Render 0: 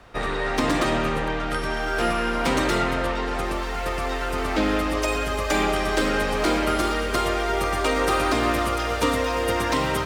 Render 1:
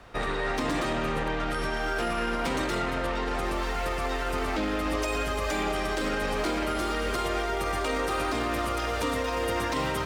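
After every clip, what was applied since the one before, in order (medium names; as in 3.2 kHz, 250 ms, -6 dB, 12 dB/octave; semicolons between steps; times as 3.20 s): peak limiter -19 dBFS, peak gain reduction 8.5 dB; trim -1 dB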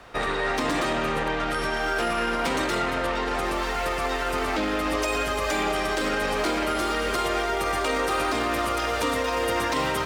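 bass shelf 220 Hz -7 dB; trim +4.5 dB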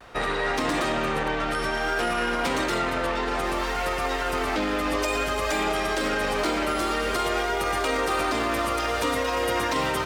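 vibrato 0.56 Hz 32 cents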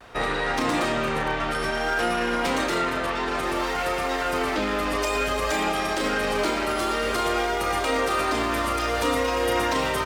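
doubling 34 ms -7 dB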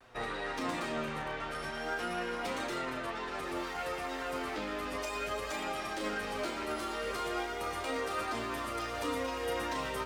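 flange 0.35 Hz, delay 7.5 ms, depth 7.9 ms, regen +35%; trim -8 dB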